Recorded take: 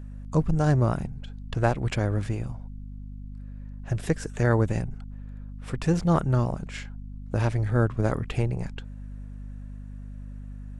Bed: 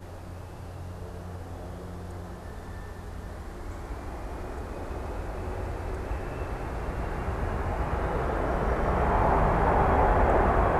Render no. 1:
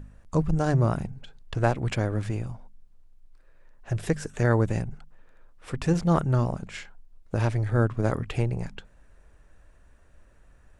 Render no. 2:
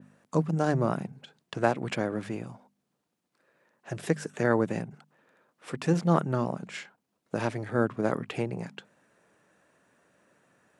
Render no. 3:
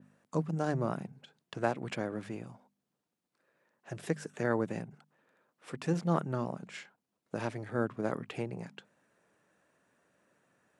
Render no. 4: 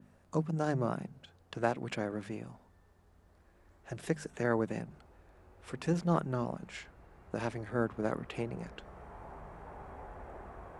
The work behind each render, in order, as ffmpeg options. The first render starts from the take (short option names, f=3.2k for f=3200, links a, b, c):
-af "bandreject=f=50:t=h:w=4,bandreject=f=100:t=h:w=4,bandreject=f=150:t=h:w=4,bandreject=f=200:t=h:w=4,bandreject=f=250:t=h:w=4"
-af "highpass=f=160:w=0.5412,highpass=f=160:w=1.3066,adynamicequalizer=threshold=0.00178:dfrequency=7200:dqfactor=0.76:tfrequency=7200:tqfactor=0.76:attack=5:release=100:ratio=0.375:range=3:mode=cutabove:tftype=bell"
-af "volume=-6dB"
-filter_complex "[1:a]volume=-25.5dB[a];[0:a][a]amix=inputs=2:normalize=0"